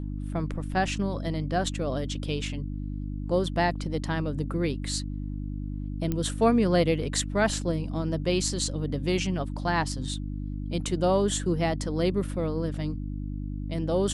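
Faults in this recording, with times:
hum 50 Hz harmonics 6 -33 dBFS
6.12 s: pop -16 dBFS

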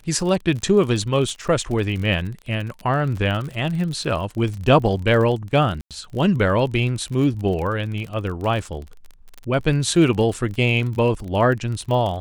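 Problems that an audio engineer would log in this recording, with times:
crackle 44 per s -28 dBFS
5.81–5.91 s: dropout 97 ms

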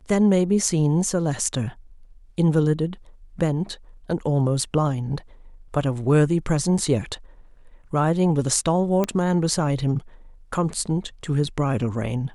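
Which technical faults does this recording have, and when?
9.04 s: pop -10 dBFS

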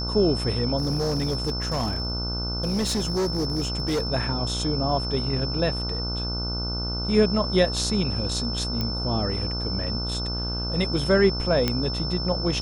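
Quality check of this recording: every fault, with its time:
buzz 60 Hz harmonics 25 -30 dBFS
whine 5.3 kHz -30 dBFS
0.77–4.07 s: clipped -21 dBFS
8.81 s: pop -14 dBFS
11.68 s: pop -8 dBFS

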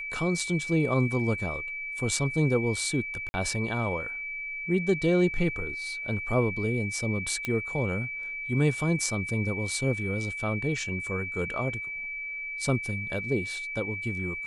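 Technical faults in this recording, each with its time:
whine 2.3 kHz -33 dBFS
3.29–3.34 s: dropout 50 ms
7.45 s: pop -16 dBFS

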